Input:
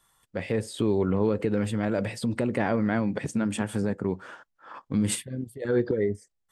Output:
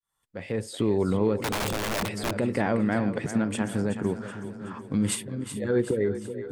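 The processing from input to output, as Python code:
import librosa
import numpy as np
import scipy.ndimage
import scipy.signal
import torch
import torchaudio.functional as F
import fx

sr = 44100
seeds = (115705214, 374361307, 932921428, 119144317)

y = fx.fade_in_head(x, sr, length_s=0.73)
y = fx.echo_split(y, sr, split_hz=330.0, low_ms=598, high_ms=375, feedback_pct=52, wet_db=-10.5)
y = fx.overflow_wrap(y, sr, gain_db=22.5, at=(1.39, 2.35))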